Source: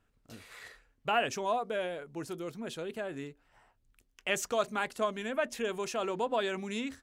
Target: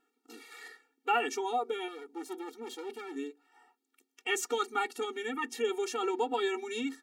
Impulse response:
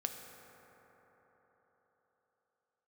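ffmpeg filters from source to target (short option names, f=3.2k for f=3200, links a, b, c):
-filter_complex "[0:a]asettb=1/sr,asplit=3[a][b][c];[a]atrim=end=1.884[d];[b]atrim=start=1.88:end=3.16,asetpts=PTS-STARTPTS,afade=t=in:d=0.004:c=qsin,afade=t=out:st=1.276:d=0.004:c=qsin,aeval=exprs='clip(val(0),-1,0.00316)':c=same[e];[c]atrim=start=3.156[f];[d][e]acrossfade=d=0.004:c1=hsin:c2=qsin[g];[g][f]acrossfade=d=0.004:c1=qsin:c2=hsin,afftfilt=real='re*eq(mod(floor(b*sr/1024/240),2),1)':imag='im*eq(mod(floor(b*sr/1024/240),2),1)':win_size=1024:overlap=0.75,volume=4dB"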